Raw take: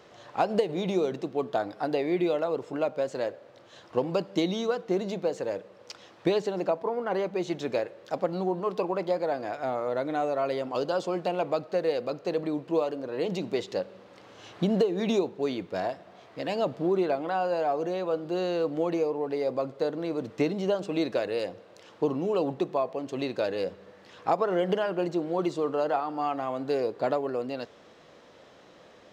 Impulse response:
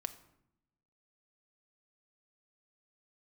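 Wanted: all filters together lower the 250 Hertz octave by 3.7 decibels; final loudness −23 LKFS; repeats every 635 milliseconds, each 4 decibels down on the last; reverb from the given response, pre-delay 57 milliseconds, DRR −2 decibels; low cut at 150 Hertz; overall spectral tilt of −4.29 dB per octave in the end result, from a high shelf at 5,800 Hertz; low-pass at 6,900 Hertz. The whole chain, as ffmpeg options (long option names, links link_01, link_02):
-filter_complex "[0:a]highpass=150,lowpass=6900,equalizer=frequency=250:width_type=o:gain=-5,highshelf=frequency=5800:gain=-5,aecho=1:1:635|1270|1905|2540|3175|3810|4445|5080|5715:0.631|0.398|0.25|0.158|0.0994|0.0626|0.0394|0.0249|0.0157,asplit=2[link_01][link_02];[1:a]atrim=start_sample=2205,adelay=57[link_03];[link_02][link_03]afir=irnorm=-1:irlink=0,volume=3.5dB[link_04];[link_01][link_04]amix=inputs=2:normalize=0,volume=2dB"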